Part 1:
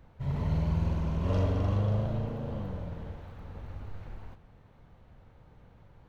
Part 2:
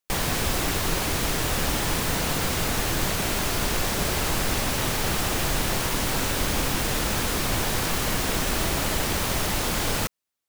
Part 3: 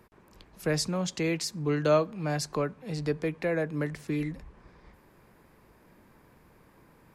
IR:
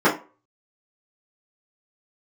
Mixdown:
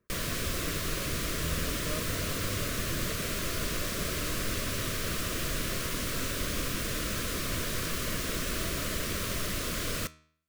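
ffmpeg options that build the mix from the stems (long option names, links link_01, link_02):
-filter_complex "[0:a]adelay=800,volume=-4.5dB[link_01];[1:a]volume=-2.5dB[link_02];[2:a]lowpass=2300,volume=-12.5dB,asplit=2[link_03][link_04];[link_04]apad=whole_len=303694[link_05];[link_01][link_05]sidechaincompress=threshold=-46dB:ratio=8:attack=16:release=222[link_06];[link_06][link_02][link_03]amix=inputs=3:normalize=0,flanger=delay=9.7:depth=3.1:regen=86:speed=0.44:shape=sinusoidal,asuperstop=centerf=830:order=4:qfactor=2.2"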